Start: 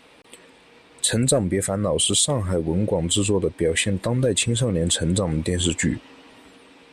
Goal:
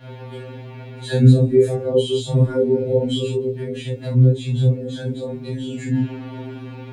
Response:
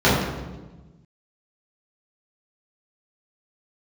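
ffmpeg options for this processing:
-filter_complex "[0:a]bass=frequency=250:gain=-7,treble=frequency=4000:gain=-6,bandreject=frequency=208.7:width_type=h:width=4,bandreject=frequency=417.4:width_type=h:width=4,bandreject=frequency=626.1:width_type=h:width=4,bandreject=frequency=834.8:width_type=h:width=4,bandreject=frequency=1043.5:width_type=h:width=4,bandreject=frequency=1252.2:width_type=h:width=4,bandreject=frequency=1460.9:width_type=h:width=4,bandreject=frequency=1669.6:width_type=h:width=4,bandreject=frequency=1878.3:width_type=h:width=4,bandreject=frequency=2087:width_type=h:width=4,bandreject=frequency=2295.7:width_type=h:width=4,bandreject=frequency=2504.4:width_type=h:width=4,bandreject=frequency=2713.1:width_type=h:width=4,bandreject=frequency=2921.8:width_type=h:width=4,bandreject=frequency=3130.5:width_type=h:width=4,bandreject=frequency=3339.2:width_type=h:width=4,bandreject=frequency=3547.9:width_type=h:width=4,bandreject=frequency=3756.6:width_type=h:width=4,bandreject=frequency=3965.3:width_type=h:width=4,bandreject=frequency=4174:width_type=h:width=4,bandreject=frequency=4382.7:width_type=h:width=4,bandreject=frequency=4591.4:width_type=h:width=4,bandreject=frequency=4800.1:width_type=h:width=4,bandreject=frequency=5008.8:width_type=h:width=4,bandreject=frequency=5217.5:width_type=h:width=4,bandreject=frequency=5426.2:width_type=h:width=4,bandreject=frequency=5634.9:width_type=h:width=4,bandreject=frequency=5843.6:width_type=h:width=4,bandreject=frequency=6052.3:width_type=h:width=4,bandreject=frequency=6261:width_type=h:width=4,bandreject=frequency=6469.7:width_type=h:width=4,bandreject=frequency=6678.4:width_type=h:width=4,bandreject=frequency=6887.1:width_type=h:width=4,bandreject=frequency=7095.8:width_type=h:width=4,bandreject=frequency=7304.5:width_type=h:width=4,bandreject=frequency=7513.2:width_type=h:width=4,bandreject=frequency=7721.9:width_type=h:width=4,bandreject=frequency=7930.6:width_type=h:width=4,bandreject=frequency=8139.3:width_type=h:width=4,acrossover=split=390|3000[link_01][link_02][link_03];[link_02]acompressor=threshold=-38dB:ratio=10[link_04];[link_01][link_04][link_03]amix=inputs=3:normalize=0,alimiter=limit=-24dB:level=0:latency=1:release=62,asettb=1/sr,asplit=3[link_05][link_06][link_07];[link_05]atrim=end=3.274[link_08];[link_06]atrim=start=3.27:end=5.91,asetpts=PTS-STARTPTS,afade=type=in:duration=0.004:curve=qsin,afade=type=out:start_time=2.636:duration=0.004:curve=qsin,acompressor=threshold=-35dB:ratio=12[link_09];[link_07]atrim=start=5.906[link_10];[link_08][link_09]acrossfade=duration=0.004:curve1=hsin:curve2=qsin[link_11];[link_11][link_10]acrossfade=duration=0.004:curve1=qsin:curve2=hsin,acrusher=bits=10:mix=0:aa=0.000001,aeval=exprs='val(0)+0.00251*(sin(2*PI*60*n/s)+sin(2*PI*2*60*n/s)/2+sin(2*PI*3*60*n/s)/3+sin(2*PI*4*60*n/s)/4+sin(2*PI*5*60*n/s)/5)':channel_layout=same[link_12];[1:a]atrim=start_sample=2205,atrim=end_sample=3528[link_13];[link_12][link_13]afir=irnorm=-1:irlink=0,afftfilt=real='re*2.45*eq(mod(b,6),0)':imag='im*2.45*eq(mod(b,6),0)':win_size=2048:overlap=0.75,volume=-11dB"

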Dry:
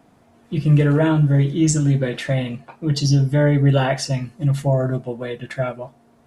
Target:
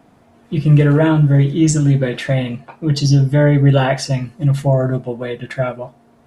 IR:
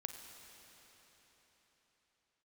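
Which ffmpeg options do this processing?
-filter_complex "[0:a]asplit=2[link_01][link_02];[1:a]atrim=start_sample=2205,atrim=end_sample=3528,lowpass=5300[link_03];[link_02][link_03]afir=irnorm=-1:irlink=0,volume=-7dB[link_04];[link_01][link_04]amix=inputs=2:normalize=0,volume=1.5dB"

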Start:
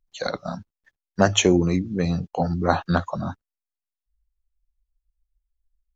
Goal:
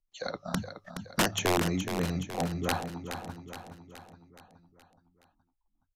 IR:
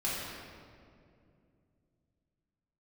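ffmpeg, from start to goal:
-filter_complex "[0:a]bandreject=frequency=50:width_type=h:width=6,bandreject=frequency=100:width_type=h:width=6,bandreject=frequency=150:width_type=h:width=6,acrossover=split=440|1800[link_01][link_02][link_03];[link_03]alimiter=limit=-10.5dB:level=0:latency=1:release=355[link_04];[link_01][link_02][link_04]amix=inputs=3:normalize=0,asettb=1/sr,asplit=3[link_05][link_06][link_07];[link_05]atrim=end=0.544[link_08];[link_06]atrim=start=0.54:end=1.22,asetpts=PTS-STARTPTS,afade=type=in:duration=0.004:curve=qsin,afade=type=out:start_time=0.676:duration=0.004:curve=qsin,aeval=exprs='0.562*sin(PI/2*3.16*val(0)/0.562)':channel_layout=same[link_09];[link_07]atrim=start=1.216[link_10];[link_08][link_09]acrossfade=duration=0.004:curve1=hsin:curve2=qsin[link_11];[link_11][link_10]acrossfade=duration=0.004:curve1=qsin:curve2=hsin,asettb=1/sr,asplit=3[link_12][link_13][link_14];[link_12]atrim=end=2.894[link_15];[link_13]atrim=start=2.89:end=3.29,asetpts=PTS-STARTPTS,afade=type=in:duration=0.004:curve=qsin,afade=type=out:start_time=0.396:duration=0.004:curve=qsin,asplit=3[link_16][link_17][link_18];[link_16]bandpass=frequency=300:width_type=q:width=8,volume=0dB[link_19];[link_17]bandpass=frequency=870:width_type=q:width=8,volume=-6dB[link_20];[link_18]bandpass=frequency=2240:width_type=q:width=8,volume=-9dB[link_21];[link_19][link_20][link_21]amix=inputs=3:normalize=0[link_22];[link_14]atrim=start=3.286[link_23];[link_15][link_22]acrossfade=duration=0.004:curve1=hsin:curve2=qsin[link_24];[link_24][link_23]acrossfade=duration=0.004:curve1=qsin:curve2=hsin,aeval=exprs='(mod(2.99*val(0)+1,2)-1)/2.99':channel_layout=same,asplit=2[link_25][link_26];[link_26]aecho=0:1:421|842|1263|1684|2105|2526:0.376|0.199|0.106|0.056|0.0297|0.0157[link_27];[link_25][link_27]amix=inputs=2:normalize=0,aresample=32000,aresample=44100,volume=-8.5dB"

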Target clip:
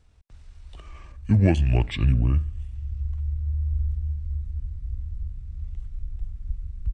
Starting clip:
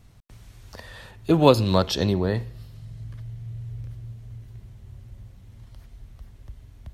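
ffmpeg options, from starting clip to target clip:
ffmpeg -i in.wav -af "asetrate=28595,aresample=44100,atempo=1.54221,asubboost=boost=11.5:cutoff=150,volume=-6dB" out.wav

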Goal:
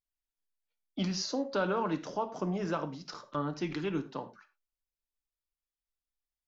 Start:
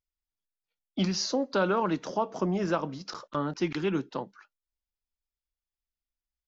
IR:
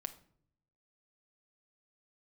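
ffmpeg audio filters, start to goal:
-filter_complex "[1:a]atrim=start_sample=2205,atrim=end_sample=4410,asetrate=37044,aresample=44100[link_01];[0:a][link_01]afir=irnorm=-1:irlink=0,volume=-3dB"

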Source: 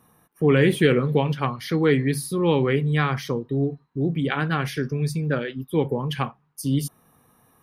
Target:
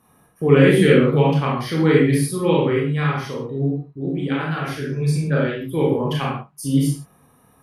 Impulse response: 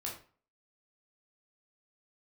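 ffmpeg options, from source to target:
-filter_complex "[0:a]asplit=3[link_01][link_02][link_03];[link_01]afade=type=out:start_time=2.53:duration=0.02[link_04];[link_02]flanger=delay=4.8:depth=6.4:regen=65:speed=1.6:shape=sinusoidal,afade=type=in:start_time=2.53:duration=0.02,afade=type=out:start_time=5:duration=0.02[link_05];[link_03]afade=type=in:start_time=5:duration=0.02[link_06];[link_04][link_05][link_06]amix=inputs=3:normalize=0[link_07];[1:a]atrim=start_sample=2205,afade=type=out:start_time=0.15:duration=0.01,atrim=end_sample=7056,asetrate=24696,aresample=44100[link_08];[link_07][link_08]afir=irnorm=-1:irlink=0"

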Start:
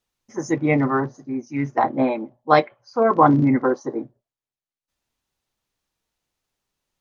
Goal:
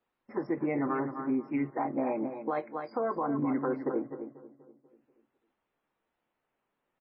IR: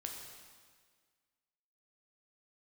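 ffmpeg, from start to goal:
-filter_complex "[0:a]acompressor=threshold=-28dB:ratio=6,acrossover=split=190 2200:gain=0.178 1 0.1[link_01][link_02][link_03];[link_01][link_02][link_03]amix=inputs=3:normalize=0,asplit=2[link_04][link_05];[link_05]aecho=0:1:258:0.299[link_06];[link_04][link_06]amix=inputs=2:normalize=0,alimiter=level_in=1.5dB:limit=-24dB:level=0:latency=1:release=61,volume=-1.5dB,asplit=2[link_07][link_08];[link_08]adelay=244,lowpass=frequency=1700:poles=1,volume=-15.5dB,asplit=2[link_09][link_10];[link_10]adelay=244,lowpass=frequency=1700:poles=1,volume=0.53,asplit=2[link_11][link_12];[link_12]adelay=244,lowpass=frequency=1700:poles=1,volume=0.53,asplit=2[link_13][link_14];[link_14]adelay=244,lowpass=frequency=1700:poles=1,volume=0.53,asplit=2[link_15][link_16];[link_16]adelay=244,lowpass=frequency=1700:poles=1,volume=0.53[link_17];[link_09][link_11][link_13][link_15][link_17]amix=inputs=5:normalize=0[link_18];[link_07][link_18]amix=inputs=2:normalize=0,volume=4dB" -ar 16000 -c:a libmp3lame -b:a 16k

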